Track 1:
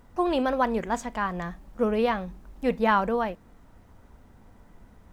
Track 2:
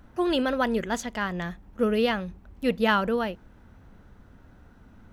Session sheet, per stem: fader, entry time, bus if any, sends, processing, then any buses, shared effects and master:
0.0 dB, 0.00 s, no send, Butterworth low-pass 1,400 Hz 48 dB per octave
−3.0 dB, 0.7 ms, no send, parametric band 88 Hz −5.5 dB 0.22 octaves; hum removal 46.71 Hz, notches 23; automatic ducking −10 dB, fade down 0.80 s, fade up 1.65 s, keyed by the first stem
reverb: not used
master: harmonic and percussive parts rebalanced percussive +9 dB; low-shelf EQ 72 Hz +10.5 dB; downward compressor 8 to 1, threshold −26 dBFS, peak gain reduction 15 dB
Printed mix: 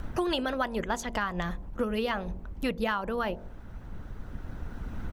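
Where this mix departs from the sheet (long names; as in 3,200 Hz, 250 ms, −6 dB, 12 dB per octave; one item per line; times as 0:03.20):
stem 1 0.0 dB → −7.5 dB
stem 2 −3.0 dB → +6.5 dB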